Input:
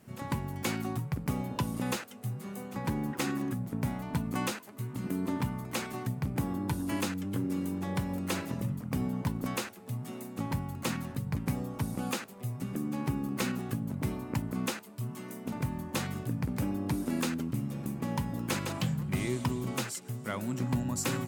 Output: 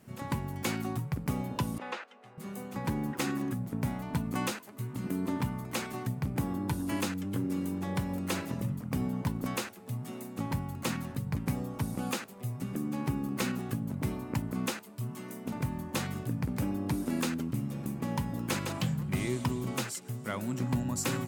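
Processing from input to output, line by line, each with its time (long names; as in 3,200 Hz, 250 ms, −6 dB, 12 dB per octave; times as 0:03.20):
0:01.78–0:02.38: band-pass filter 550–2,700 Hz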